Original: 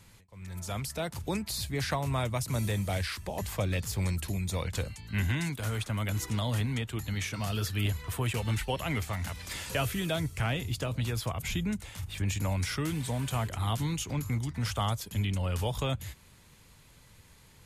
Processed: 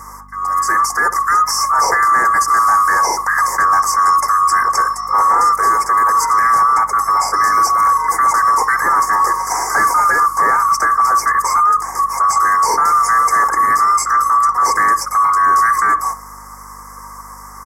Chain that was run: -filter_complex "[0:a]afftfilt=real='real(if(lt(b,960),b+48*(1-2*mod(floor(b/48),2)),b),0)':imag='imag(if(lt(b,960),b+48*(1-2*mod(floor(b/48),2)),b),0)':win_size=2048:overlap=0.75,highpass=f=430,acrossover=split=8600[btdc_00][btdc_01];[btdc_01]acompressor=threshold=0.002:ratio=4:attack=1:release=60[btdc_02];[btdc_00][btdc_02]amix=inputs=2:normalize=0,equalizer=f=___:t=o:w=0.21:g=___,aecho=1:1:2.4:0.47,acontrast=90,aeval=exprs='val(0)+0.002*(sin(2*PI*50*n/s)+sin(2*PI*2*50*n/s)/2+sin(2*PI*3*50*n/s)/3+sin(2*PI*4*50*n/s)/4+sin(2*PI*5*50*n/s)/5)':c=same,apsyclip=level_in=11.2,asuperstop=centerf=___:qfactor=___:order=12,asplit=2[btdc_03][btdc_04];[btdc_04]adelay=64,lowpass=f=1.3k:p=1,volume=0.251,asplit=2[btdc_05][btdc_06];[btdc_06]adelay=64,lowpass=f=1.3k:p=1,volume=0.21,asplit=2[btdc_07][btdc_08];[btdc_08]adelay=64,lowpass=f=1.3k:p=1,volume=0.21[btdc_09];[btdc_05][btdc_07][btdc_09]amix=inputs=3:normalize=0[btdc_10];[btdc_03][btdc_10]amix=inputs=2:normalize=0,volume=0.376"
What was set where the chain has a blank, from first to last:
960, 13.5, 3200, 1.1